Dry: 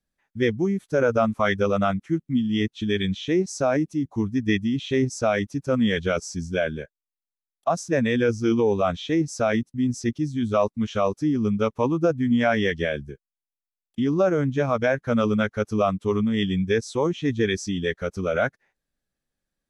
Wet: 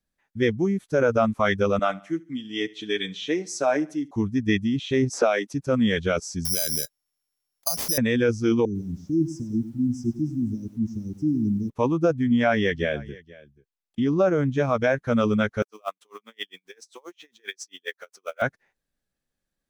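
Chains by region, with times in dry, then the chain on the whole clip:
1.79–4.11 HPF 370 Hz + comb 6.7 ms, depth 49% + feedback echo 72 ms, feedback 44%, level -22.5 dB
5.13–5.53 HPF 290 Hz 24 dB/oct + three-band squash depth 100%
6.45–7.98 compressor 12:1, threshold -30 dBFS + careless resampling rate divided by 8×, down none, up zero stuff
8.65–11.7 Chebyshev band-stop 340–5000 Hz, order 5 + high shelf 3200 Hz -12 dB + lo-fi delay 99 ms, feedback 35%, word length 9-bit, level -12.5 dB
12.23–14.46 high shelf 8600 Hz -9 dB + echo 0.483 s -21.5 dB
15.62–18.42 Bessel high-pass 710 Hz, order 4 + companded quantiser 6-bit + dB-linear tremolo 7.5 Hz, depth 38 dB
whole clip: dry

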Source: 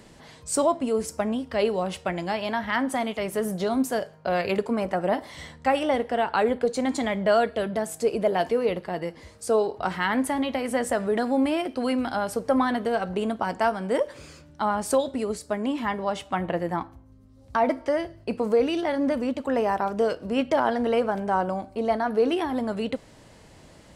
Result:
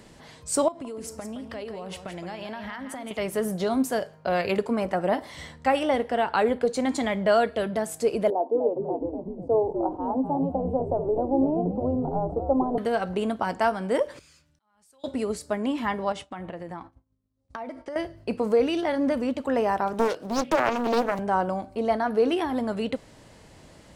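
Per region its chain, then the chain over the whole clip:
0.68–3.11 compressor 16:1, threshold -32 dBFS + echo 0.168 s -8.5 dB
8.3–12.78 elliptic band-pass 260–900 Hz + frequency-shifting echo 0.247 s, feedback 57%, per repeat -90 Hz, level -6.5 dB
14.19–15.04 passive tone stack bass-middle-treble 5-5-5 + compressor 10:1, threshold -51 dBFS + auto swell 0.605 s
16.12–17.96 expander -39 dBFS + compressor, threshold -33 dBFS + steep low-pass 11000 Hz 96 dB/oct
19.93–21.19 HPF 160 Hz + high shelf 7000 Hz +10 dB + Doppler distortion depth 0.89 ms
whole clip: dry

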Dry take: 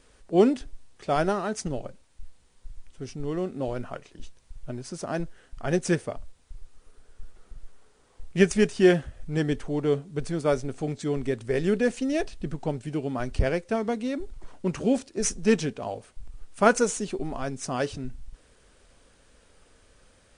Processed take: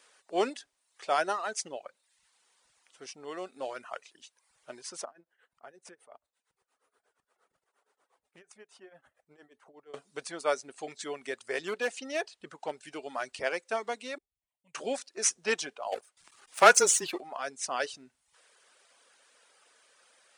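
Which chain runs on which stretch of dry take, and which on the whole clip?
5.05–9.94 bell 5500 Hz -12 dB 3 oct + compressor 10:1, threshold -36 dBFS + tremolo triangle 8.5 Hz, depth 80%
11.61–12.85 high shelf 8100 Hz -6.5 dB + hard clip -17 dBFS
14.18–14.75 passive tone stack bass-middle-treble 10-0-1 + fixed phaser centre 1400 Hz, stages 6
15.92–17.21 sample leveller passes 2 + frequency shift -24 Hz
whole clip: reverb removal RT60 0.69 s; HPF 750 Hz 12 dB/oct; gain +1.5 dB

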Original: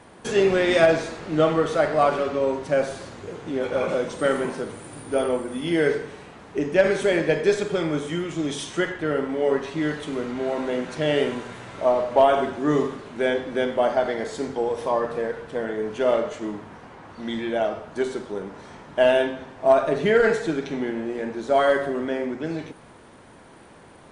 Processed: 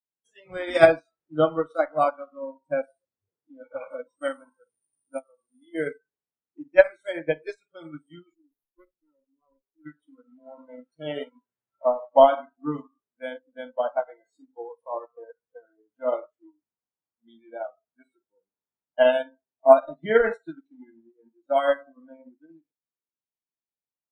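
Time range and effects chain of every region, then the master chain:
5.19–5.75 compressor 5:1, threshold -27 dBFS + doubler 21 ms -12 dB
8.34–9.86 low shelf 140 Hz -9 dB + resonator 180 Hz, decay 0.48 s + running maximum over 17 samples
whole clip: spectral noise reduction 28 dB; upward expander 2.5:1, over -36 dBFS; gain +5 dB

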